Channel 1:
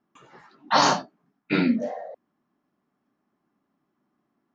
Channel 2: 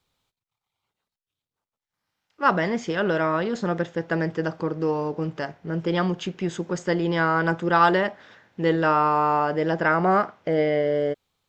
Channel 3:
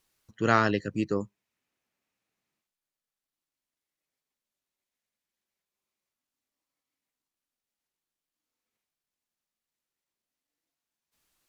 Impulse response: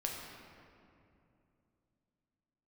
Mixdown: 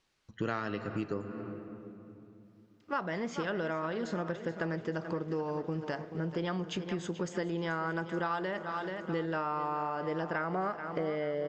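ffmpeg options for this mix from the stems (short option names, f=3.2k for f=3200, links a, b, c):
-filter_complex "[1:a]adelay=500,volume=-3.5dB,asplit=3[a][b][c];[b]volume=-21.5dB[d];[c]volume=-13dB[e];[2:a]lowpass=5k,volume=0dB,asplit=2[f][g];[g]volume=-8.5dB[h];[3:a]atrim=start_sample=2205[i];[d][h]amix=inputs=2:normalize=0[j];[j][i]afir=irnorm=-1:irlink=0[k];[e]aecho=0:1:433|866|1299|1732|2165|2598|3031:1|0.5|0.25|0.125|0.0625|0.0312|0.0156[l];[a][f][k][l]amix=inputs=4:normalize=0,acompressor=threshold=-31dB:ratio=6"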